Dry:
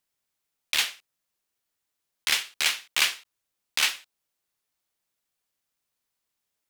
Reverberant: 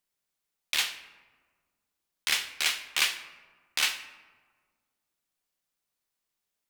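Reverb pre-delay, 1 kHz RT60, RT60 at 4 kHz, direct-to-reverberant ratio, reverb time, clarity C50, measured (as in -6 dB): 3 ms, 1.5 s, 0.75 s, 9.0 dB, 1.6 s, 12.0 dB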